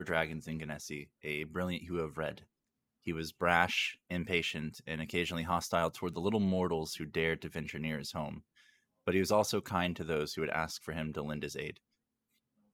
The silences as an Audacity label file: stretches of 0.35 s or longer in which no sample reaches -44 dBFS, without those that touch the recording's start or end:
2.380000	3.070000	silence
8.390000	9.070000	silence